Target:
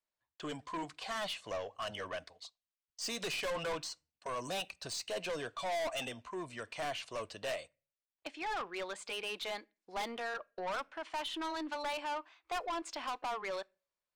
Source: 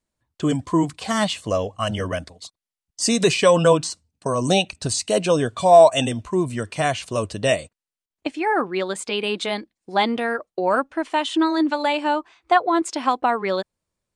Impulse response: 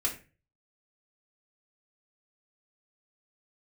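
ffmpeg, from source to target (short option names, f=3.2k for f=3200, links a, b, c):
-filter_complex "[0:a]acrossover=split=520 5900:gain=0.158 1 0.2[a][b][c];[a][b][c]amix=inputs=3:normalize=0,aeval=exprs='(tanh(20*val(0)+0.1)-tanh(0.1))/20':c=same,asplit=2[d][e];[1:a]atrim=start_sample=2205[f];[e][f]afir=irnorm=-1:irlink=0,volume=-24.5dB[g];[d][g]amix=inputs=2:normalize=0,volume=-8.5dB"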